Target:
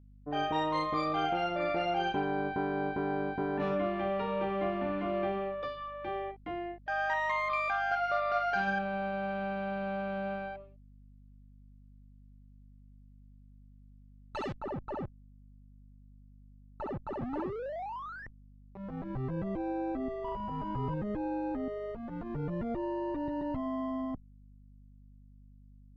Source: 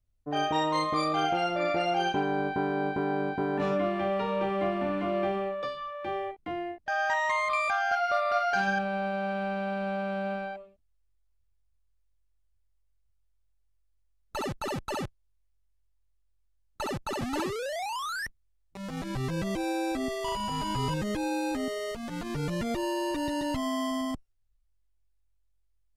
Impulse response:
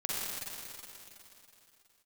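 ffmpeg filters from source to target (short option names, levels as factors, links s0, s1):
-af "asetnsamples=n=441:p=0,asendcmd='14.58 lowpass f 1100',lowpass=3700,aeval=exprs='val(0)+0.00282*(sin(2*PI*50*n/s)+sin(2*PI*2*50*n/s)/2+sin(2*PI*3*50*n/s)/3+sin(2*PI*4*50*n/s)/4+sin(2*PI*5*50*n/s)/5)':c=same,volume=0.668"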